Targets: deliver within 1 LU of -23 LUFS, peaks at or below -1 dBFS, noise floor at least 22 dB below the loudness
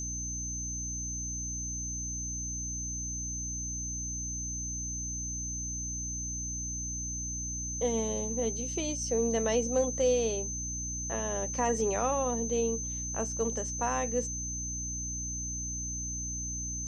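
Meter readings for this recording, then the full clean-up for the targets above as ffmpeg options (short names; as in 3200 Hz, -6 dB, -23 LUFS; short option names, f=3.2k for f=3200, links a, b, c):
hum 60 Hz; harmonics up to 300 Hz; hum level -38 dBFS; steady tone 6200 Hz; tone level -35 dBFS; loudness -32.0 LUFS; peak -16.0 dBFS; loudness target -23.0 LUFS
-> -af "bandreject=f=60:t=h:w=6,bandreject=f=120:t=h:w=6,bandreject=f=180:t=h:w=6,bandreject=f=240:t=h:w=6,bandreject=f=300:t=h:w=6"
-af "bandreject=f=6.2k:w=30"
-af "volume=9dB"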